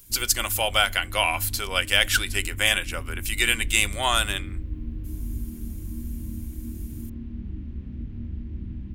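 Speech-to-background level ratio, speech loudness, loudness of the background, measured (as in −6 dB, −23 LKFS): 13.5 dB, −23.0 LKFS, −36.5 LKFS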